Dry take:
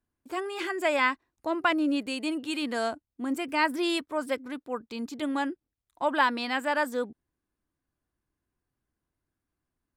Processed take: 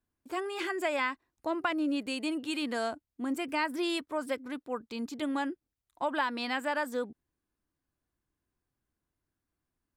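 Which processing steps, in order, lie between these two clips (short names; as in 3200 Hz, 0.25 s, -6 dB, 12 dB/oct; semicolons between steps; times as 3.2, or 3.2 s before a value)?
compressor 3:1, threshold -26 dBFS, peak gain reduction 6.5 dB; gain -1.5 dB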